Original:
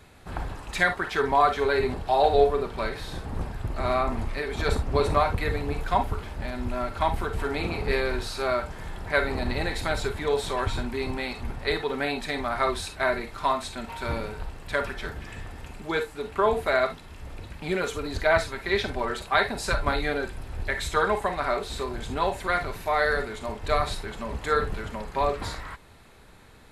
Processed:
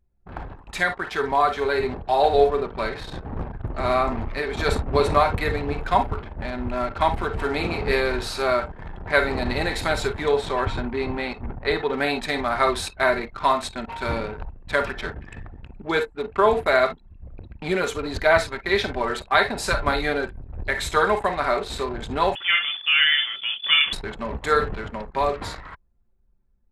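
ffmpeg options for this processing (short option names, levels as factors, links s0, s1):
-filter_complex "[0:a]asettb=1/sr,asplit=3[s0][s1][s2];[s0]atrim=end=10.314[s3];[s1]atrim=start=10.31:end=11.93,asetpts=PTS-STARTPTS,afade=t=in:d=0.004:c=qsin,afade=t=out:st=1.616:d=0.004:c=qsin,highshelf=f=4200:g=-9[s4];[s2]atrim=start=11.926[s5];[s3][s4]acrossfade=d=0.004:c1=hsin:c2=qsin[s6];[s6][s5]acrossfade=d=0.004:c1=qsin:c2=hsin,asettb=1/sr,asplit=3[s7][s8][s9];[s7]atrim=end=22.354[s10];[s8]atrim=start=22.35:end=23.93,asetpts=PTS-STARTPTS,afade=t=in:d=0.004:c=qsin,afade=t=out:st=1.576:d=0.004:c=qsin,lowpass=f=3000:t=q:w=0.5098,lowpass=f=3000:t=q:w=0.6013,lowpass=f=3000:t=q:w=0.9,lowpass=f=3000:t=q:w=2.563,afreqshift=-3500[s11];[s9]atrim=start=23.926[s12];[s10][s11]acrossfade=d=0.004:c1=hsin:c2=qsin[s13];[s13][s12]acrossfade=d=0.004:c1=qsin:c2=hsin,lowshelf=f=110:g=-5,anlmdn=1,dynaudnorm=f=410:g=11:m=1.88"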